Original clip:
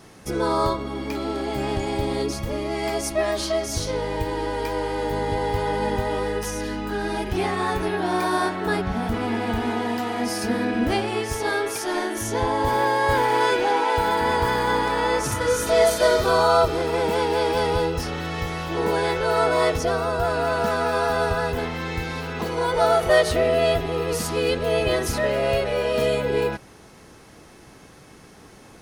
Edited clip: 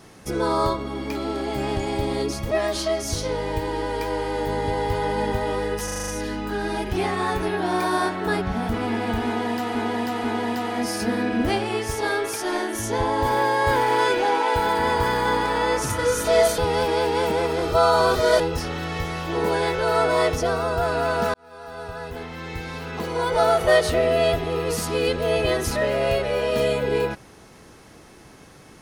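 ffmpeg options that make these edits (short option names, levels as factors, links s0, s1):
-filter_complex "[0:a]asplit=13[s0][s1][s2][s3][s4][s5][s6][s7][s8][s9][s10][s11][s12];[s0]atrim=end=2.512[s13];[s1]atrim=start=3.148:end=6.522[s14];[s2]atrim=start=6.478:end=6.522[s15];[s3]atrim=start=6.478:end=6.522[s16];[s4]atrim=start=6.478:end=6.522[s17];[s5]atrim=start=6.478:end=6.522[s18];[s6]atrim=start=6.478:end=6.522[s19];[s7]atrim=start=6.478:end=10.152[s20];[s8]atrim=start=9.658:end=10.152[s21];[s9]atrim=start=9.658:end=16.002[s22];[s10]atrim=start=15.998:end=17.822,asetpts=PTS-STARTPTS,areverse[s23];[s11]atrim=start=17.818:end=20.76,asetpts=PTS-STARTPTS,afade=t=out:st=2.938:d=0.004:c=hsin[s24];[s12]atrim=start=20.76,asetpts=PTS-STARTPTS,afade=t=in:d=2.02[s25];[s13][s14]acrossfade=d=0.004:c1=hsin:c2=hsin[s26];[s26][s15]acrossfade=d=0.004:c1=hsin:c2=hsin[s27];[s27][s16]acrossfade=d=0.004:c1=hsin:c2=hsin[s28];[s28][s17]acrossfade=d=0.004:c1=hsin:c2=hsin[s29];[s29][s18]acrossfade=d=0.004:c1=hsin:c2=hsin[s30];[s30][s19]acrossfade=d=0.004:c1=hsin:c2=hsin[s31];[s31][s20]acrossfade=d=0.004:c1=hsin:c2=hsin[s32];[s32][s21]acrossfade=d=0.004:c1=hsin:c2=hsin[s33];[s33][s22]acrossfade=d=0.004:c1=hsin:c2=hsin[s34];[s34][s23]acrossfade=d=0.004:c1=hsin:c2=hsin[s35];[s24][s25]concat=n=2:v=0:a=1[s36];[s35][s36]acrossfade=d=0.004:c1=hsin:c2=hsin"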